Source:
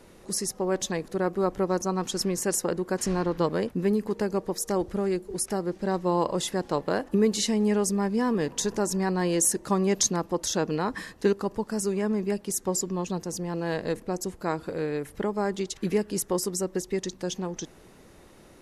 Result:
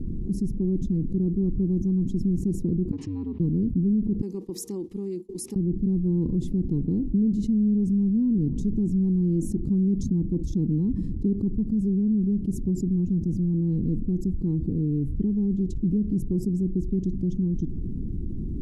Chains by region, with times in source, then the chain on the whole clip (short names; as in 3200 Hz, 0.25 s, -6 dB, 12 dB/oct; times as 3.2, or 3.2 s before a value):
2.91–3.4 Butterworth band-pass 1800 Hz, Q 0.85 + frequency shift -89 Hz
4.21–5.56 HPF 1100 Hz + expander -48 dBFS
whole clip: inverse Chebyshev low-pass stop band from 570 Hz, stop band 40 dB; low shelf 100 Hz +10.5 dB; fast leveller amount 70%